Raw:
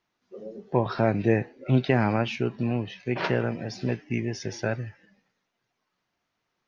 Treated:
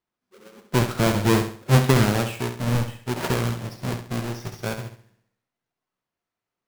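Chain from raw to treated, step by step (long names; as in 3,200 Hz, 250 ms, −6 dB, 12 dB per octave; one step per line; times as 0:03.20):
each half-wave held at its own peak
flutter between parallel walls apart 11.6 metres, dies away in 0.69 s
expander for the loud parts 1.5 to 1, over −39 dBFS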